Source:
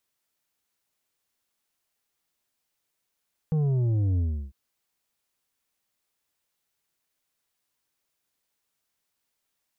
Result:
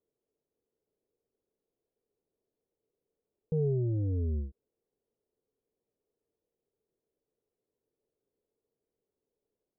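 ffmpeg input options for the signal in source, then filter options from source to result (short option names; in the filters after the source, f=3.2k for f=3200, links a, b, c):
-f lavfi -i "aevalsrc='0.0794*clip((1-t)/0.34,0,1)*tanh(2.24*sin(2*PI*160*1/log(65/160)*(exp(log(65/160)*t/1)-1)))/tanh(2.24)':d=1:s=44100"
-af "alimiter=level_in=5dB:limit=-24dB:level=0:latency=1,volume=-5dB,lowpass=f=440:t=q:w=4.9"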